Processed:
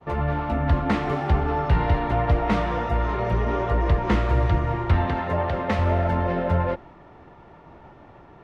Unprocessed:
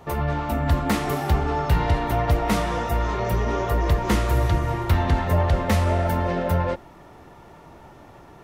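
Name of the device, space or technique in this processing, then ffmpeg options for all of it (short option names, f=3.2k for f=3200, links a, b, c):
hearing-loss simulation: -filter_complex "[0:a]asettb=1/sr,asplit=3[a][b][c];[a]atrim=end=5.064[d];[b]atrim=start=5.06:end=5.79,asetpts=PTS-STARTPTS,afade=t=in:d=0.004:c=qsin,afade=t=out:st=0.726:d=0.004:c=qsin,highpass=f=200:p=1[e];[c]atrim=start=5.786[f];[d][e]acrossfade=d=0.004:c1=hsin:c2=qsin[g];[g][f]acrossfade=d=0.004:c1=qsin:c2=hsin,lowpass=2.9k,agate=range=-33dB:threshold=-44dB:ratio=3:detection=peak"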